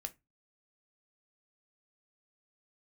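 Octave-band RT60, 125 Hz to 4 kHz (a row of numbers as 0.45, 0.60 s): 0.35, 0.30, 0.20, 0.20, 0.20, 0.15 s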